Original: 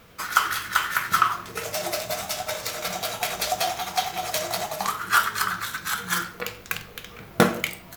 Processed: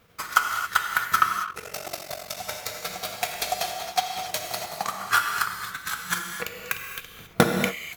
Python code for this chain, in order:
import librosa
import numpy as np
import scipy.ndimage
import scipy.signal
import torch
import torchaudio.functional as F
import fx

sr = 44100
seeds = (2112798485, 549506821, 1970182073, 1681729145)

y = fx.transient(x, sr, attack_db=9, sustain_db=-8)
y = fx.rev_gated(y, sr, seeds[0], gate_ms=300, shape='flat', drr_db=2.5)
y = fx.ring_mod(y, sr, carrier_hz=23.0, at=(1.45, 2.37))
y = y * 10.0 ** (-8.5 / 20.0)